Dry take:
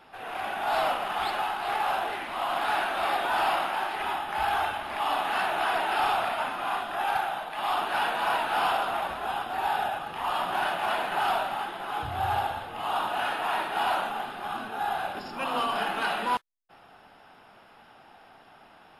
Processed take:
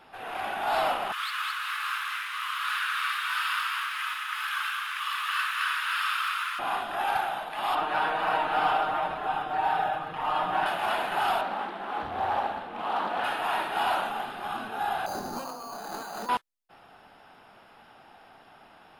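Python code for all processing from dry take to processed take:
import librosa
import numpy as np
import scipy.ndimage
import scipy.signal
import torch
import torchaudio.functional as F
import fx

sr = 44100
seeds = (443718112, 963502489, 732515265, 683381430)

y = fx.chain(x, sr, fx.law_mismatch(coded='mu'),
    fx.steep_highpass(hz=1100.0, slope=72),
    fx.echo_single(ms=215, db=-3.5), at=(1.12, 6.59))
y = fx.chain(y, sr, fx.lowpass(hz=2000.0, slope=6),
    fx.comb(ms=6.5, depth=0.79), at=(7.75, 10.66))
y = fx.chain(y, sr, fx.lowpass(hz=2400.0, slope=6),
    fx.low_shelf_res(hz=160.0, db=-7.0, q=3.0),
    fx.doppler_dist(depth_ms=0.38), at=(11.41, 13.24))
y = fx.chain(y, sr, fx.lowpass(hz=1300.0, slope=12),
    fx.over_compress(threshold_db=-37.0, ratio=-1.0),
    fx.resample_bad(factor=8, down='none', up='hold'), at=(15.06, 16.29))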